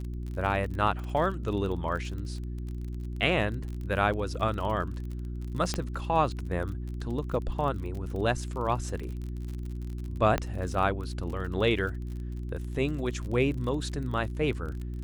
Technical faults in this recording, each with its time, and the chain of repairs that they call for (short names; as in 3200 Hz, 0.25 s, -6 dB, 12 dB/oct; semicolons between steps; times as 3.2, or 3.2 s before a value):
crackle 39/s -36 dBFS
hum 60 Hz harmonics 6 -35 dBFS
1.04 pop
5.74 pop -15 dBFS
10.38 pop -13 dBFS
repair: de-click; de-hum 60 Hz, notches 6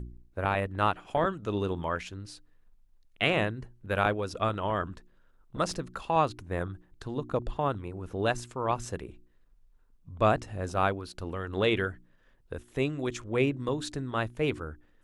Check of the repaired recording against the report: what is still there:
5.74 pop